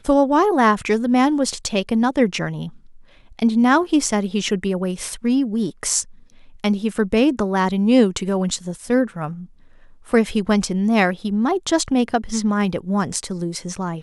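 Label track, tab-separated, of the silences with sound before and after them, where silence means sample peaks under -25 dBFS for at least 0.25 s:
2.670000	3.390000	silence
6.020000	6.640000	silence
9.320000	10.130000	silence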